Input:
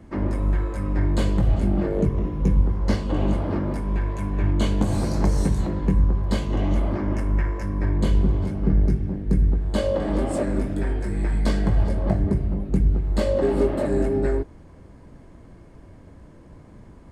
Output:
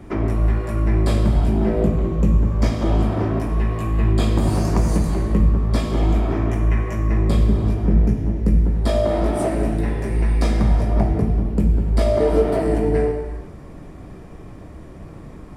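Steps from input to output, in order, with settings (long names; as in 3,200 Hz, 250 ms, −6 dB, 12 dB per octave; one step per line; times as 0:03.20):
reverb whose tail is shaped and stops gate 470 ms falling, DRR 4 dB
speed change +10%
in parallel at +1 dB: downward compressor, threshold −32 dBFS, peak gain reduction 18.5 dB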